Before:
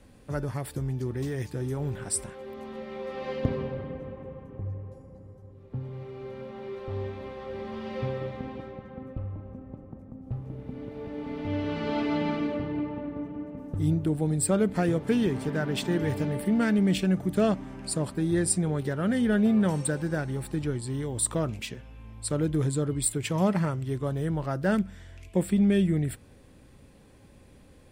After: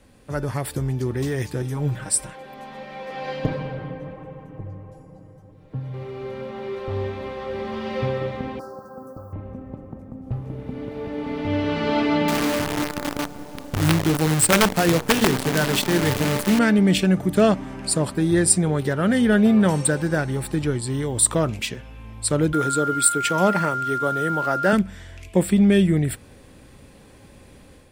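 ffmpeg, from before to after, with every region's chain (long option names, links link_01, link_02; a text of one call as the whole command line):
ffmpeg -i in.wav -filter_complex "[0:a]asettb=1/sr,asplit=3[link_01][link_02][link_03];[link_01]atrim=end=1.624[link_04];[link_02]atrim=start=1.62:end=5.94,asetpts=PTS-STARTPTS,afade=type=in:duration=0.004:curve=qsin,afade=type=out:start_time=4.316:duration=0.004:curve=qsin,aecho=1:1:6.4:0.88,atrim=end_sample=190512,flanger=delay=1.3:depth=6.9:regen=85:speed=1.5:shape=sinusoidal[link_05];[link_03]atrim=start=5.936[link_06];[link_04][link_05]acrossfade=duration=0.004:curve1=hsin:curve2=qsin[link_07];[link_07][link_06]acrossfade=duration=0.004:curve1=qsin:curve2=hsin,asettb=1/sr,asplit=3[link_08][link_09][link_10];[link_08]atrim=end=8.594[link_11];[link_09]atrim=start=8.59:end=9.33,asetpts=PTS-STARTPTS,afade=type=in:duration=0.004:curve=qsin,afade=type=out:start_time=0.736:duration=0.004:curve=qsin,asuperstop=centerf=2700:order=12:qfactor=0.85,aemphasis=mode=production:type=riaa[link_12];[link_10]atrim=start=9.326[link_13];[link_11][link_12]acrossfade=duration=0.004:curve1=hsin:curve2=qsin[link_14];[link_14][link_13]acrossfade=duration=0.004:curve1=qsin:curve2=hsin,asettb=1/sr,asplit=3[link_15][link_16][link_17];[link_15]atrim=end=12.284[link_18];[link_16]atrim=start=12.28:end=16.59,asetpts=PTS-STARTPTS,afade=type=in:duration=0.004:curve=qsin,afade=type=out:start_time=4.306:duration=0.004:curve=qsin,bandreject=frequency=60:width_type=h:width=6,bandreject=frequency=120:width_type=h:width=6,bandreject=frequency=180:width_type=h:width=6,bandreject=frequency=240:width_type=h:width=6,bandreject=frequency=300:width_type=h:width=6,bandreject=frequency=360:width_type=h:width=6,bandreject=frequency=420:width_type=h:width=6,bandreject=frequency=480:width_type=h:width=6,bandreject=frequency=540:width_type=h:width=6,bandreject=frequency=600:width_type=h:width=6,acrusher=bits=6:dc=4:mix=0:aa=0.000001,aeval=exprs='(mod(7.08*val(0)+1,2)-1)/7.08':channel_layout=same[link_19];[link_17]atrim=start=16.586[link_20];[link_18][link_19]acrossfade=duration=0.004:curve1=hsin:curve2=qsin[link_21];[link_21][link_20]acrossfade=duration=0.004:curve1=qsin:curve2=hsin,asettb=1/sr,asplit=3[link_22][link_23][link_24];[link_22]atrim=end=22.534[link_25];[link_23]atrim=start=22.53:end=24.73,asetpts=PTS-STARTPTS,afade=type=in:duration=0.004:curve=qsin,afade=type=out:start_time=2.196:duration=0.004:curve=qsin,highpass=220,acrusher=bits=8:mix=0:aa=0.5,aeval=exprs='val(0)+0.0251*sin(2*PI*1400*n/s)':channel_layout=same[link_26];[link_24]atrim=start=24.726[link_27];[link_25][link_26]acrossfade=duration=0.004:curve1=hsin:curve2=qsin[link_28];[link_28][link_27]acrossfade=duration=0.004:curve1=qsin:curve2=hsin,dynaudnorm=framelen=250:gausssize=3:maxgain=6dB,lowshelf=frequency=460:gain=-4,volume=3.5dB" out.wav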